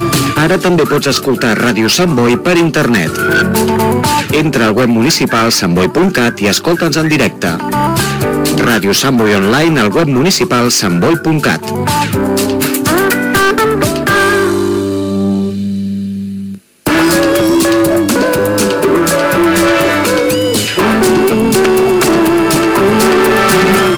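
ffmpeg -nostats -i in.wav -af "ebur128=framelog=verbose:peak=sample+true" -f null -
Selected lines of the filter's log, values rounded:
Integrated loudness:
  I:         -10.6 LUFS
  Threshold: -20.7 LUFS
Loudness range:
  LRA:         2.4 LU
  Threshold: -30.8 LUFS
  LRA low:   -12.3 LUFS
  LRA high:   -9.9 LUFS
Sample peak:
  Peak:       -6.1 dBFS
True peak:
  Peak:       -3.5 dBFS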